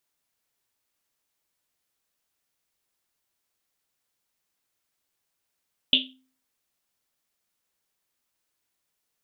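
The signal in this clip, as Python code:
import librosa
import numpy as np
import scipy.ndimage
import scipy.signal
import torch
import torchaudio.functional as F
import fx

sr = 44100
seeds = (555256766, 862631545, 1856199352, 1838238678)

y = fx.risset_drum(sr, seeds[0], length_s=1.1, hz=260.0, decay_s=0.47, noise_hz=3200.0, noise_width_hz=860.0, noise_pct=80)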